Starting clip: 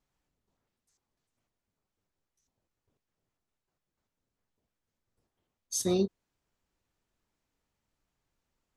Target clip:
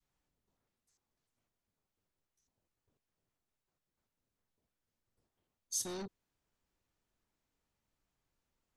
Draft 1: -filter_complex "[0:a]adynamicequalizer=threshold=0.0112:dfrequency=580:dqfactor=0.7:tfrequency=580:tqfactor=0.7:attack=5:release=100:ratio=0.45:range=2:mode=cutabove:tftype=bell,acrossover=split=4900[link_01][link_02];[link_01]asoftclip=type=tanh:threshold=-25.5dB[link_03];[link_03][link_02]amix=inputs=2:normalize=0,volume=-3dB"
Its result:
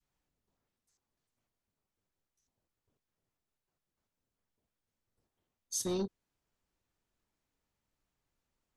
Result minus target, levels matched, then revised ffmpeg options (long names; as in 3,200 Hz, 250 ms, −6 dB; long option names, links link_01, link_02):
soft clipping: distortion −8 dB
-filter_complex "[0:a]adynamicequalizer=threshold=0.0112:dfrequency=580:dqfactor=0.7:tfrequency=580:tqfactor=0.7:attack=5:release=100:ratio=0.45:range=2:mode=cutabove:tftype=bell,acrossover=split=4900[link_01][link_02];[link_01]asoftclip=type=tanh:threshold=-37.5dB[link_03];[link_03][link_02]amix=inputs=2:normalize=0,volume=-3dB"